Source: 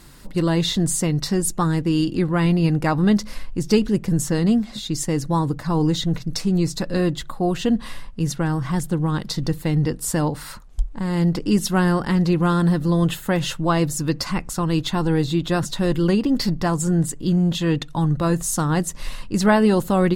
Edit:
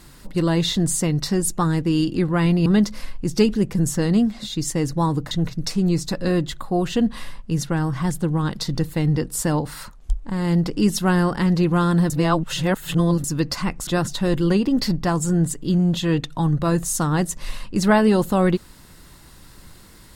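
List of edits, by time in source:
0:02.66–0:02.99: remove
0:05.64–0:06.00: remove
0:12.79–0:13.93: reverse
0:14.56–0:15.45: remove

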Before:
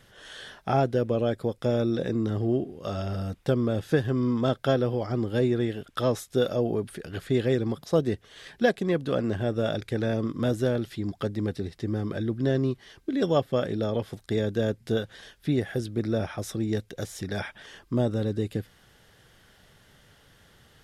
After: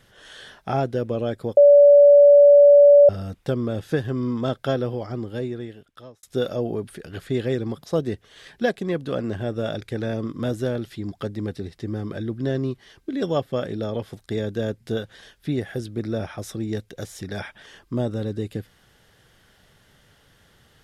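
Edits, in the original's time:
0:01.57–0:03.09: beep over 575 Hz −7.5 dBFS
0:04.85–0:06.23: fade out

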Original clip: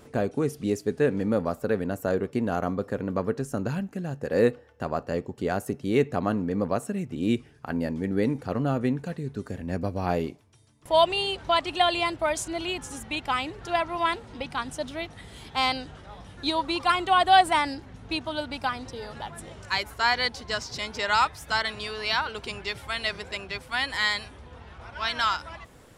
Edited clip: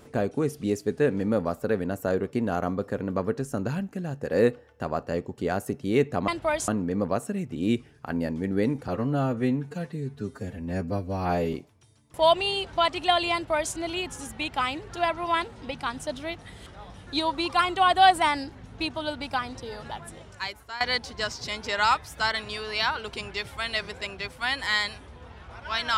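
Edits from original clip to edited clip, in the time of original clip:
0:08.48–0:10.25: time-stretch 1.5×
0:12.05–0:12.45: duplicate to 0:06.28
0:15.38–0:15.97: remove
0:19.24–0:20.11: fade out, to −16 dB

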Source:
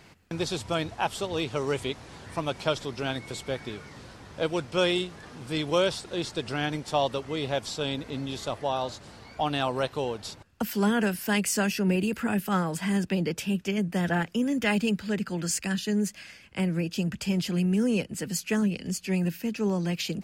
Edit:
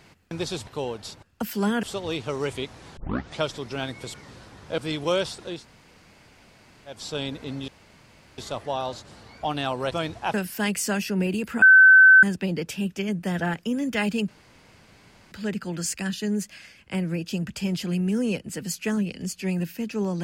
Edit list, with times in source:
0:00.67–0:01.10: swap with 0:09.87–0:11.03
0:02.24: tape start 0.43 s
0:03.41–0:03.82: remove
0:04.46–0:05.44: remove
0:06.22–0:07.62: fill with room tone, crossfade 0.24 s
0:08.34: splice in room tone 0.70 s
0:12.31–0:12.92: beep over 1,530 Hz −8.5 dBFS
0:14.97: splice in room tone 1.04 s

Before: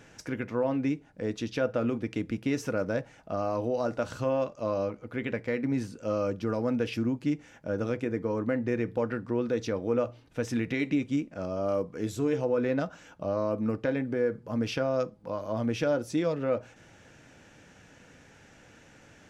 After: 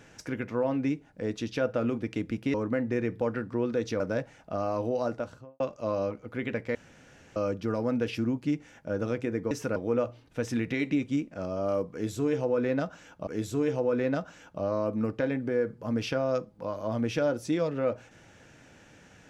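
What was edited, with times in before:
0:02.54–0:02.79: swap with 0:08.30–0:09.76
0:03.78–0:04.39: fade out and dull
0:05.54–0:06.15: fill with room tone
0:11.92–0:13.27: repeat, 2 plays

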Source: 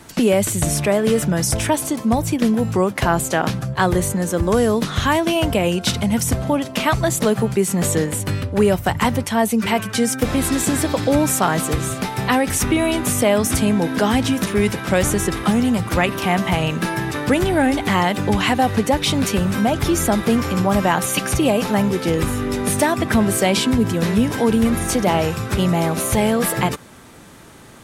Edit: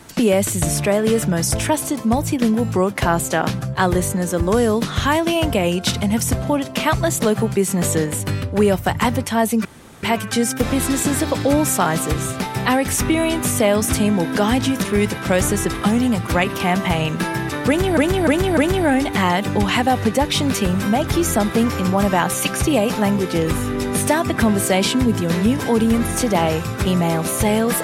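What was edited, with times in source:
0:09.65: splice in room tone 0.38 s
0:17.29–0:17.59: repeat, 4 plays

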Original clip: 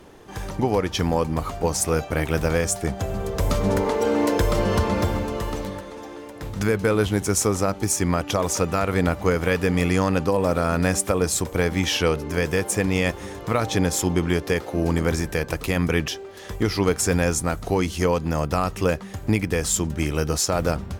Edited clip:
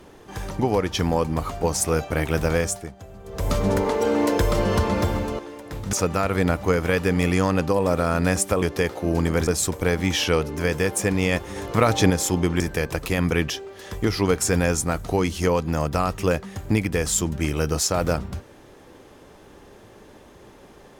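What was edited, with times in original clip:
0:02.61–0:03.54: duck −15 dB, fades 0.30 s
0:05.39–0:06.09: remove
0:06.63–0:08.51: remove
0:13.29–0:13.83: clip gain +4 dB
0:14.33–0:15.18: move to 0:11.20

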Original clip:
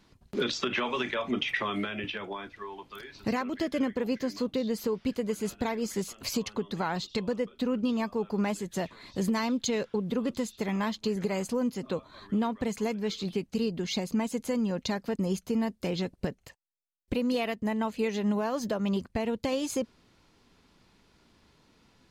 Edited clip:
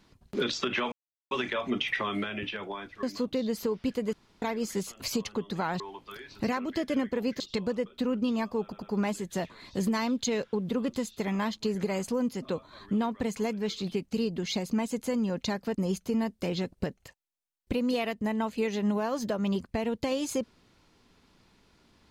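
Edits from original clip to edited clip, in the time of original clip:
0:00.92: splice in silence 0.39 s
0:02.64–0:04.24: move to 0:07.01
0:05.34–0:05.63: fill with room tone
0:08.23: stutter 0.10 s, 3 plays

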